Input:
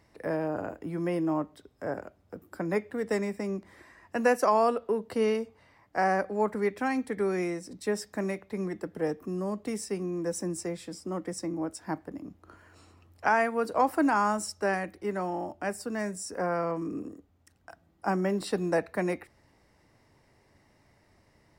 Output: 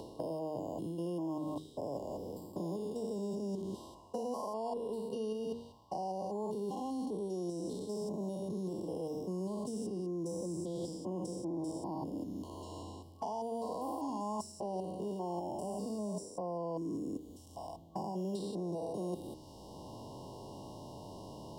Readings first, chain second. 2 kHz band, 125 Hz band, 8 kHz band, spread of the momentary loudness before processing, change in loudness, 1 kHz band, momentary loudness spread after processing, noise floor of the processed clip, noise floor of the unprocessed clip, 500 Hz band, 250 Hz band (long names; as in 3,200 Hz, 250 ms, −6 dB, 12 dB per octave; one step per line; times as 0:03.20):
below −35 dB, −5.0 dB, −9.5 dB, 12 LU, −9.5 dB, −11.0 dB, 10 LU, −54 dBFS, −65 dBFS, −8.5 dB, −6.0 dB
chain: spectrum averaged block by block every 200 ms
hum removal 77.89 Hz, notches 6
reversed playback
downward compressor 4 to 1, threshold −45 dBFS, peak gain reduction 19 dB
reversed playback
brick-wall band-stop 1,100–2,800 Hz
multiband upward and downward compressor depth 70%
level +7 dB